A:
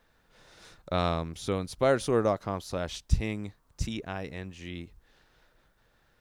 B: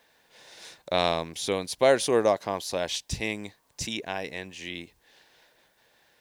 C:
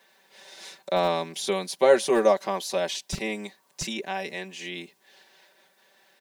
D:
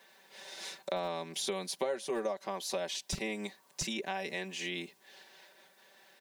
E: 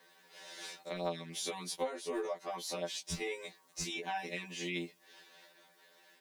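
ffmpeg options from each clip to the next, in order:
ffmpeg -i in.wav -af "highpass=frequency=730:poles=1,equalizer=frequency=1300:width_type=o:width=0.34:gain=-13,volume=9dB" out.wav
ffmpeg -i in.wav -filter_complex "[0:a]acrossover=split=160|1500[link_01][link_02][link_03];[link_01]acrusher=bits=5:mix=0:aa=0.000001[link_04];[link_03]alimiter=level_in=1.5dB:limit=-24dB:level=0:latency=1:release=31,volume=-1.5dB[link_05];[link_04][link_02][link_05]amix=inputs=3:normalize=0,aecho=1:1:5.2:0.92" out.wav
ffmpeg -i in.wav -af "acompressor=threshold=-33dB:ratio=5" out.wav
ffmpeg -i in.wav -af "afftfilt=real='re*2*eq(mod(b,4),0)':imag='im*2*eq(mod(b,4),0)':win_size=2048:overlap=0.75" out.wav

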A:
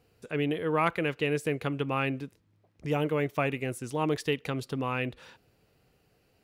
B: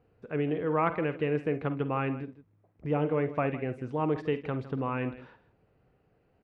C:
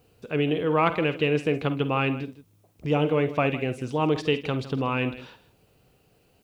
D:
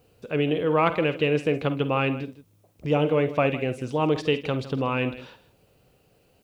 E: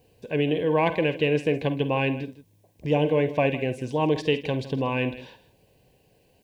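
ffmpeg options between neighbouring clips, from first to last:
ffmpeg -i in.wav -filter_complex "[0:a]lowpass=1600,asplit=2[link_01][link_02];[link_02]aecho=0:1:47|51|68|158:0.141|0.178|0.112|0.158[link_03];[link_01][link_03]amix=inputs=2:normalize=0" out.wav
ffmpeg -i in.wav -af "aexciter=amount=4.5:drive=7:freq=2700,volume=5dB" out.wav
ffmpeg -i in.wav -af "equalizer=frequency=550:width_type=o:width=0.31:gain=4.5" out.wav
ffmpeg -i in.wav -af "asuperstop=centerf=1300:order=8:qfactor=3.4" out.wav

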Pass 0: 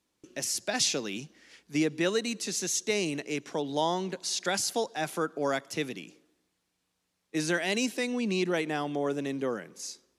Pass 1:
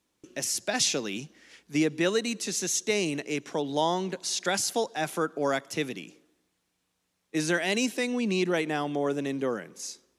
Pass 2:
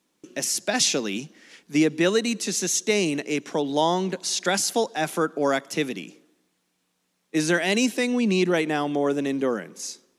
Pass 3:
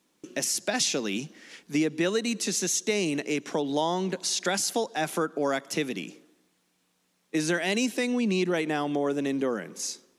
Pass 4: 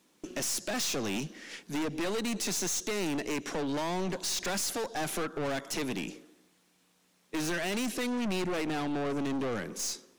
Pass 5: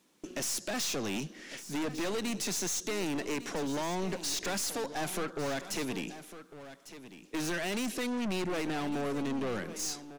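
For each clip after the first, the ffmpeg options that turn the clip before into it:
ffmpeg -i in.wav -af "equalizer=frequency=4600:width_type=o:width=0.29:gain=-2.5,volume=2dB" out.wav
ffmpeg -i in.wav -af "lowshelf=frequency=130:width_type=q:width=1.5:gain=-9.5,volume=4dB" out.wav
ffmpeg -i in.wav -af "acompressor=threshold=-29dB:ratio=2,volume=1.5dB" out.wav
ffmpeg -i in.wav -af "aeval=exprs='(tanh(50.1*val(0)+0.35)-tanh(0.35))/50.1':channel_layout=same,volume=4dB" out.wav
ffmpeg -i in.wav -af "aecho=1:1:1152:0.2,volume=-1.5dB" out.wav

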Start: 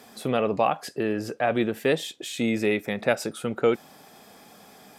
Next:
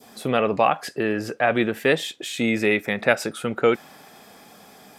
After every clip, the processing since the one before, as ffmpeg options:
ffmpeg -i in.wav -af "adynamicequalizer=threshold=0.0112:dfrequency=1800:dqfactor=0.86:tfrequency=1800:tqfactor=0.86:attack=5:release=100:ratio=0.375:range=3:mode=boostabove:tftype=bell,volume=2dB" out.wav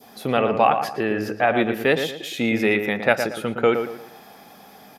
ffmpeg -i in.wav -filter_complex "[0:a]equalizer=frequency=800:width_type=o:width=0.33:gain=4,equalizer=frequency=8000:width_type=o:width=0.33:gain=-10,equalizer=frequency=12500:width_type=o:width=0.33:gain=4,asplit=2[link_01][link_02];[link_02]adelay=115,lowpass=frequency=2200:poles=1,volume=-7dB,asplit=2[link_03][link_04];[link_04]adelay=115,lowpass=frequency=2200:poles=1,volume=0.35,asplit=2[link_05][link_06];[link_06]adelay=115,lowpass=frequency=2200:poles=1,volume=0.35,asplit=2[link_07][link_08];[link_08]adelay=115,lowpass=frequency=2200:poles=1,volume=0.35[link_09];[link_01][link_03][link_05][link_07][link_09]amix=inputs=5:normalize=0" out.wav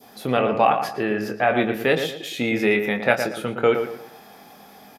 ffmpeg -i in.wav -filter_complex "[0:a]asplit=2[link_01][link_02];[link_02]adelay=24,volume=-8dB[link_03];[link_01][link_03]amix=inputs=2:normalize=0,volume=-1dB" out.wav

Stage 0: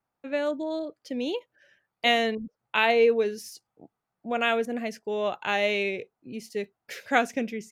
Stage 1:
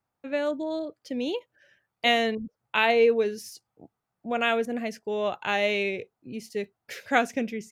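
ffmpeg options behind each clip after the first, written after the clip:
ffmpeg -i in.wav -af "equalizer=frequency=89:width=1.2:gain=6" out.wav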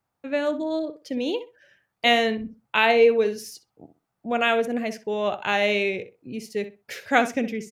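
ffmpeg -i in.wav -filter_complex "[0:a]asplit=2[link_01][link_02];[link_02]adelay=63,lowpass=frequency=2500:poles=1,volume=-11dB,asplit=2[link_03][link_04];[link_04]adelay=63,lowpass=frequency=2500:poles=1,volume=0.21,asplit=2[link_05][link_06];[link_06]adelay=63,lowpass=frequency=2500:poles=1,volume=0.21[link_07];[link_01][link_03][link_05][link_07]amix=inputs=4:normalize=0,volume=3dB" out.wav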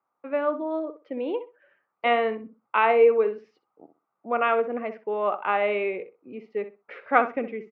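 ffmpeg -i in.wav -af "highpass=380,equalizer=frequency=670:width_type=q:width=4:gain=-3,equalizer=frequency=1200:width_type=q:width=4:gain=8,equalizer=frequency=1700:width_type=q:width=4:gain=-9,lowpass=frequency=2000:width=0.5412,lowpass=frequency=2000:width=1.3066,volume=1.5dB" out.wav

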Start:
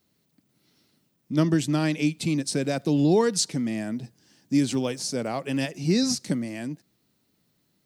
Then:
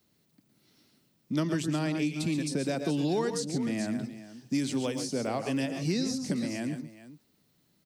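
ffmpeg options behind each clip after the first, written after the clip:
ffmpeg -i in.wav -filter_complex "[0:a]aecho=1:1:114|133|419:0.237|0.251|0.141,acrossover=split=130|860[link_01][link_02][link_03];[link_01]acompressor=threshold=-47dB:ratio=4[link_04];[link_02]acompressor=threshold=-28dB:ratio=4[link_05];[link_03]acompressor=threshold=-37dB:ratio=4[link_06];[link_04][link_05][link_06]amix=inputs=3:normalize=0" out.wav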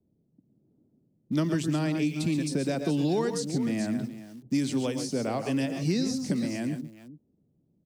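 ffmpeg -i in.wav -filter_complex "[0:a]lowshelf=frequency=420:gain=3.5,acrossover=split=630[link_01][link_02];[link_02]aeval=exprs='val(0)*gte(abs(val(0)),0.00178)':channel_layout=same[link_03];[link_01][link_03]amix=inputs=2:normalize=0" out.wav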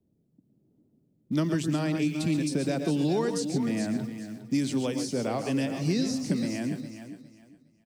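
ffmpeg -i in.wav -af "aecho=1:1:409|818|1227:0.251|0.0603|0.0145" out.wav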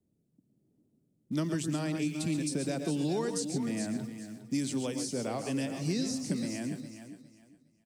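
ffmpeg -i in.wav -af "equalizer=frequency=8600:width_type=o:width=1:gain=7.5,volume=-5dB" out.wav

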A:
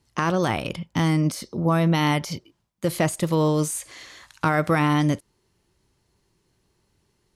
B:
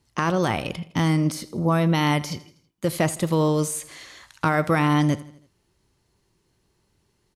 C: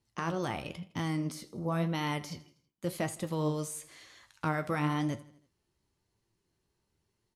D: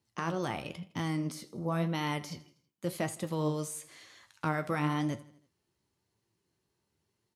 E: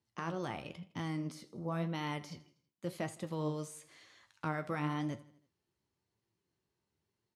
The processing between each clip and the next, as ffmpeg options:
ffmpeg -i in.wav -af "aecho=1:1:81|162|243|324:0.112|0.0583|0.0303|0.0158" out.wav
ffmpeg -i in.wav -af "flanger=delay=8.7:depth=6:regen=61:speed=0.96:shape=sinusoidal,volume=-7dB" out.wav
ffmpeg -i in.wav -af "highpass=87" out.wav
ffmpeg -i in.wav -af "highshelf=frequency=9500:gain=-11,volume=-5dB" out.wav

